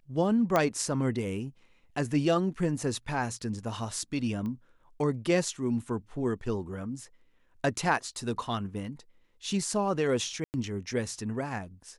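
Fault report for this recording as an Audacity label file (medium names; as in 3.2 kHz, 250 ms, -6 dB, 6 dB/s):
0.560000	0.560000	pop -12 dBFS
4.460000	4.460000	pop -27 dBFS
10.440000	10.540000	dropout 99 ms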